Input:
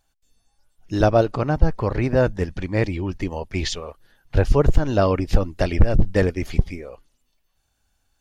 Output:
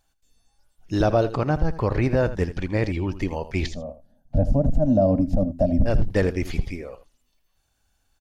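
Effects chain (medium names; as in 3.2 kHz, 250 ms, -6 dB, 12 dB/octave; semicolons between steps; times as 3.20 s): 3.66–5.86 s: FFT filter 120 Hz 0 dB, 260 Hz +10 dB, 400 Hz -21 dB, 610 Hz +9 dB, 1 kHz -16 dB, 2.2 kHz -25 dB, 7 kHz -13 dB; peak limiter -10.5 dBFS, peak gain reduction 10 dB; delay 81 ms -14 dB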